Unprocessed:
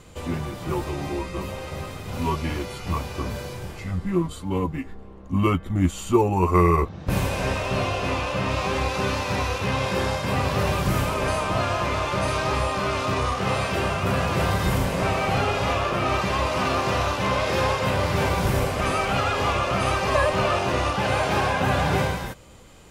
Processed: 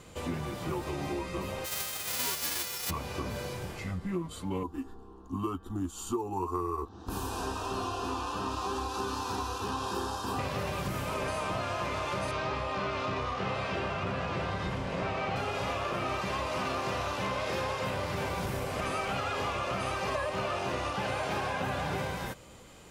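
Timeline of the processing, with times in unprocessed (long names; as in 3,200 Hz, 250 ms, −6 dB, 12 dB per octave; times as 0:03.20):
0:01.64–0:02.89: spectral envelope flattened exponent 0.1
0:04.63–0:10.39: phaser with its sweep stopped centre 570 Hz, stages 6
0:12.31–0:15.36: low-pass filter 4,600 Hz
whole clip: downward compressor, threshold −27 dBFS; low-shelf EQ 79 Hz −8 dB; level −2 dB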